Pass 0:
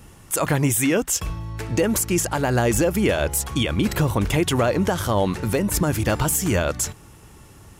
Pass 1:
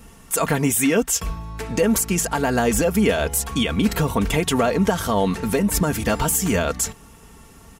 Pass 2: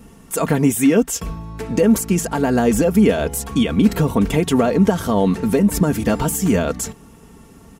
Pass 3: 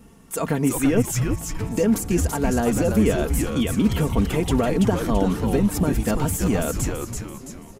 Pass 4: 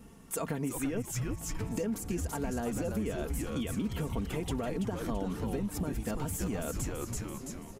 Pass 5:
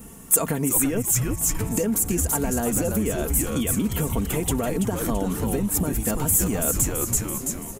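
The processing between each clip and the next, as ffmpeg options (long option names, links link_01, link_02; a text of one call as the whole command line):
ffmpeg -i in.wav -af "aecho=1:1:4.4:0.6" out.wav
ffmpeg -i in.wav -af "equalizer=frequency=250:width=0.48:gain=9,volume=-3dB" out.wav
ffmpeg -i in.wav -filter_complex "[0:a]asplit=7[link_01][link_02][link_03][link_04][link_05][link_06][link_07];[link_02]adelay=333,afreqshift=-150,volume=-4dB[link_08];[link_03]adelay=666,afreqshift=-300,volume=-10.9dB[link_09];[link_04]adelay=999,afreqshift=-450,volume=-17.9dB[link_10];[link_05]adelay=1332,afreqshift=-600,volume=-24.8dB[link_11];[link_06]adelay=1665,afreqshift=-750,volume=-31.7dB[link_12];[link_07]adelay=1998,afreqshift=-900,volume=-38.7dB[link_13];[link_01][link_08][link_09][link_10][link_11][link_12][link_13]amix=inputs=7:normalize=0,volume=-5.5dB" out.wav
ffmpeg -i in.wav -af "acompressor=threshold=-28dB:ratio=4,volume=-4dB" out.wav
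ffmpeg -i in.wav -af "aexciter=amount=3:drive=7.2:freq=6800,volume=9dB" out.wav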